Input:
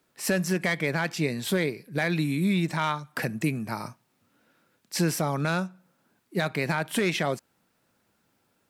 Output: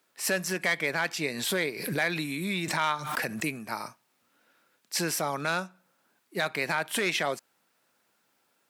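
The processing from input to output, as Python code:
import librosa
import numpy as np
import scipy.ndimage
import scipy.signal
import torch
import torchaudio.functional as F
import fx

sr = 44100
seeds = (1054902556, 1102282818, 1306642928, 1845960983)

y = fx.highpass(x, sr, hz=650.0, slope=6)
y = fx.pre_swell(y, sr, db_per_s=52.0, at=(1.34, 3.45))
y = F.gain(torch.from_numpy(y), 1.5).numpy()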